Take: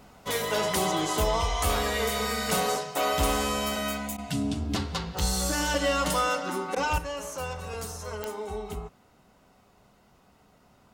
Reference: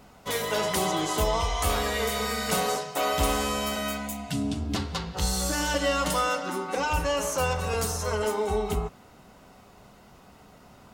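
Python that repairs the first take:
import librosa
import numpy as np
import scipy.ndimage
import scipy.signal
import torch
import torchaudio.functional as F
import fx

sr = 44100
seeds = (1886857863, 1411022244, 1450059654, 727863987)

y = fx.fix_declip(x, sr, threshold_db=-17.5)
y = fx.fix_declick_ar(y, sr, threshold=10.0)
y = fx.fix_interpolate(y, sr, at_s=(4.17, 6.75), length_ms=11.0)
y = fx.gain(y, sr, db=fx.steps((0.0, 0.0), (6.98, 8.0)))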